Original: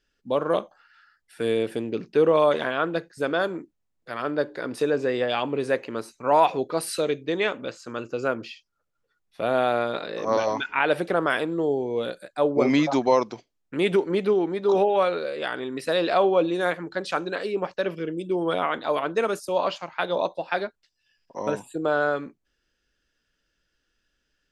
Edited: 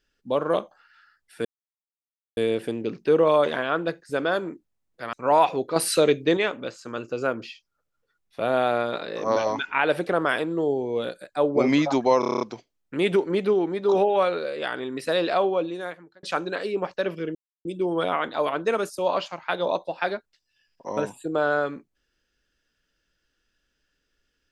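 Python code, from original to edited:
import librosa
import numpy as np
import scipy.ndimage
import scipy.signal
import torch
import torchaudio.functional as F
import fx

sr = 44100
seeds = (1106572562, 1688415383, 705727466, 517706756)

y = fx.edit(x, sr, fx.insert_silence(at_s=1.45, length_s=0.92),
    fx.cut(start_s=4.21, length_s=1.93),
    fx.clip_gain(start_s=6.77, length_s=0.61, db=6.0),
    fx.stutter(start_s=13.21, slice_s=0.03, count=8),
    fx.fade_out_span(start_s=15.98, length_s=1.05),
    fx.insert_silence(at_s=18.15, length_s=0.3), tone=tone)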